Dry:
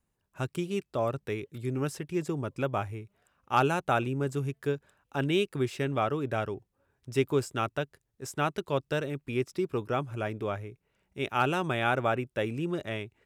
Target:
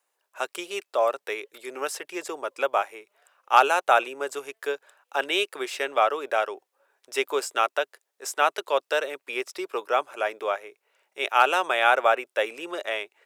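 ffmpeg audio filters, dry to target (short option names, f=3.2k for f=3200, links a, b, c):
-af "highpass=f=510:w=0.5412,highpass=f=510:w=1.3066,volume=8.5dB"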